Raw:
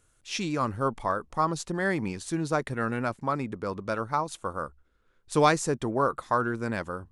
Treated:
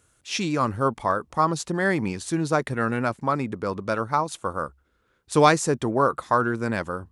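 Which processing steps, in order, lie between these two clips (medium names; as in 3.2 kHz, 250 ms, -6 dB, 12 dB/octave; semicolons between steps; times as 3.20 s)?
high-pass 56 Hz; trim +4.5 dB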